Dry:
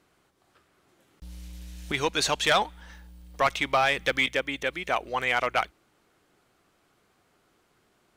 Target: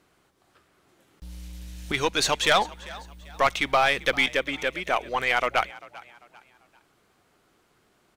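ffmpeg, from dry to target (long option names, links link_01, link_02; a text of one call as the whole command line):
ffmpeg -i in.wav -filter_complex "[0:a]asplit=4[link_01][link_02][link_03][link_04];[link_02]adelay=394,afreqshift=50,volume=-20dB[link_05];[link_03]adelay=788,afreqshift=100,volume=-28.6dB[link_06];[link_04]adelay=1182,afreqshift=150,volume=-37.3dB[link_07];[link_01][link_05][link_06][link_07]amix=inputs=4:normalize=0,aeval=exprs='0.224*(cos(1*acos(clip(val(0)/0.224,-1,1)))-cos(1*PI/2))+0.0126*(cos(4*acos(clip(val(0)/0.224,-1,1)))-cos(4*PI/2))':channel_layout=same,volume=2dB" out.wav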